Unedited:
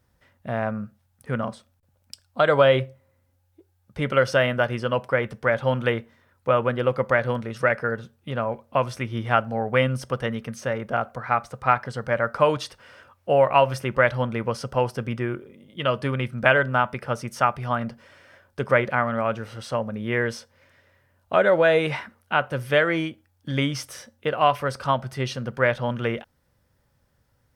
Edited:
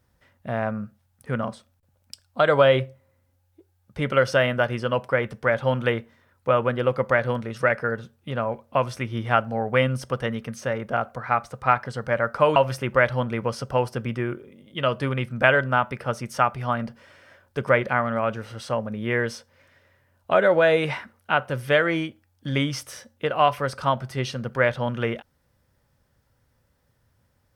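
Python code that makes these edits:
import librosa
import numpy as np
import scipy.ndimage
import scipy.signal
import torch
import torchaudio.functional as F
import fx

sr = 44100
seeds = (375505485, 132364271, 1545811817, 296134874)

y = fx.edit(x, sr, fx.cut(start_s=12.56, length_s=1.02), tone=tone)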